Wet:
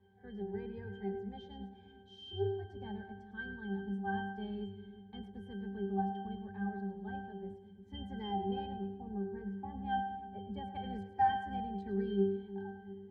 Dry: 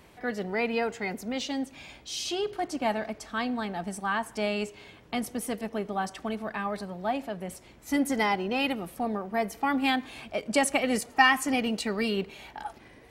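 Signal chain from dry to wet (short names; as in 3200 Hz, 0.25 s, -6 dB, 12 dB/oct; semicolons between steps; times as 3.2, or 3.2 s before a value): octaver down 2 oct, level -4 dB; 8.66–10.74 high shelf 2300 Hz -11.5 dB; octave resonator G, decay 0.55 s; split-band echo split 420 Hz, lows 0.353 s, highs 0.106 s, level -12 dB; gain +6.5 dB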